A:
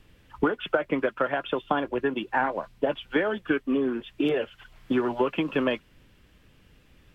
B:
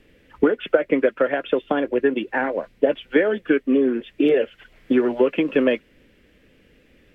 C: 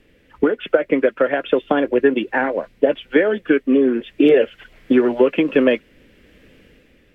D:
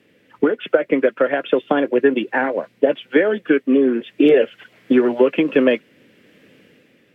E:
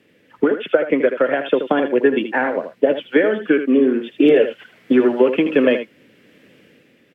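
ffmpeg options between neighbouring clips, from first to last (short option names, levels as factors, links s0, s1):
-af "equalizer=f=125:t=o:w=1:g=-3,equalizer=f=250:t=o:w=1:g=7,equalizer=f=500:t=o:w=1:g=11,equalizer=f=1000:t=o:w=1:g=-6,equalizer=f=2000:t=o:w=1:g=9,volume=0.794"
-af "dynaudnorm=f=100:g=11:m=2.37"
-af "highpass=f=120:w=0.5412,highpass=f=120:w=1.3066"
-af "aecho=1:1:79:0.335"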